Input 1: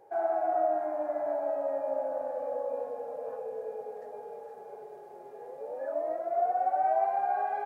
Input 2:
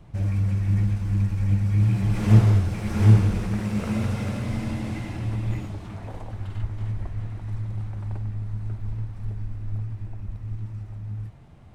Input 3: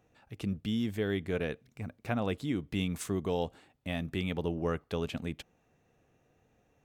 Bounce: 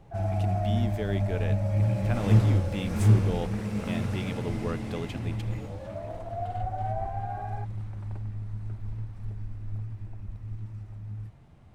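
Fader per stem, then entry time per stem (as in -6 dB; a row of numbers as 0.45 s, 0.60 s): -7.0 dB, -5.0 dB, -1.5 dB; 0.00 s, 0.00 s, 0.00 s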